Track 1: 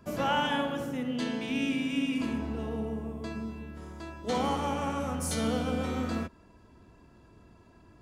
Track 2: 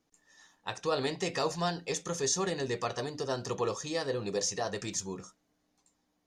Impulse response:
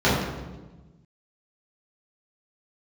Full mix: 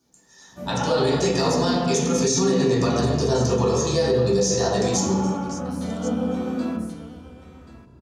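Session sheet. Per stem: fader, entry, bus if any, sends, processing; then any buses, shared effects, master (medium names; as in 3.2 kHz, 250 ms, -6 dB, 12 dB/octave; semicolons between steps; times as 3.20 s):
-2.0 dB, 0.50 s, send -20 dB, echo send -13.5 dB, auto duck -13 dB, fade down 0.80 s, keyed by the second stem
-3.5 dB, 0.00 s, send -8 dB, echo send -13.5 dB, tone controls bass -2 dB, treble +12 dB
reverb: on, RT60 1.2 s, pre-delay 3 ms
echo: delay 1082 ms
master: peak limiter -11.5 dBFS, peak gain reduction 7.5 dB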